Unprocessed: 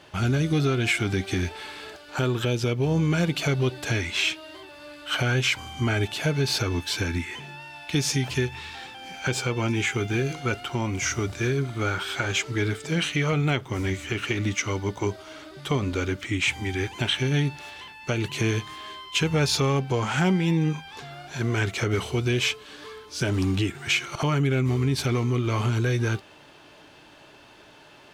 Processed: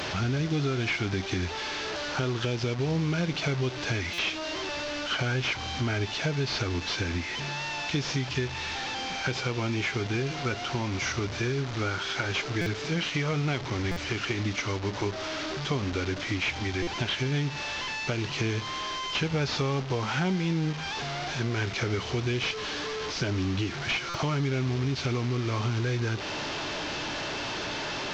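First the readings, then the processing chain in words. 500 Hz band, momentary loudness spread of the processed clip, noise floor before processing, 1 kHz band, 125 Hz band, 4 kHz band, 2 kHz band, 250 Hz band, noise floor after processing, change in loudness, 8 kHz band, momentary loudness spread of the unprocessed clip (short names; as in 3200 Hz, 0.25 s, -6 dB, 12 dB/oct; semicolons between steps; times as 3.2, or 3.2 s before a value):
-3.5 dB, 4 LU, -51 dBFS, -0.5 dB, -4.0 dB, -1.5 dB, -2.5 dB, -4.0 dB, -36 dBFS, -4.0 dB, -6.0 dB, 14 LU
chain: delta modulation 32 kbps, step -27 dBFS; compressor 2:1, threshold -28 dBFS, peak gain reduction 6 dB; stuck buffer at 4.13/12.61/13.91/16.82/24.09, samples 256, times 8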